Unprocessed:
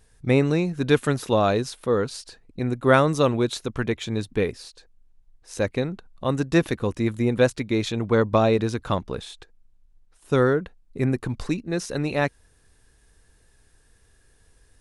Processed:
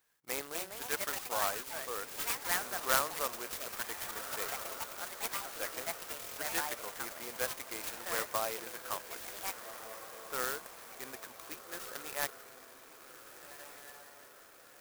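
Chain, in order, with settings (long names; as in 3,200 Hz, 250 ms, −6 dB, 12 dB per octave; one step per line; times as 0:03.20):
high-pass filter 1,200 Hz 12 dB per octave
high-shelf EQ 4,100 Hz −8 dB
delay with pitch and tempo change per echo 325 ms, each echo +5 semitones, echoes 3
on a send: feedback delay with all-pass diffusion 1,563 ms, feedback 53%, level −10.5 dB
on the sum: buffer that repeats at 0:06.19, samples 1,024, times 7
converter with an unsteady clock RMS 0.091 ms
level −5 dB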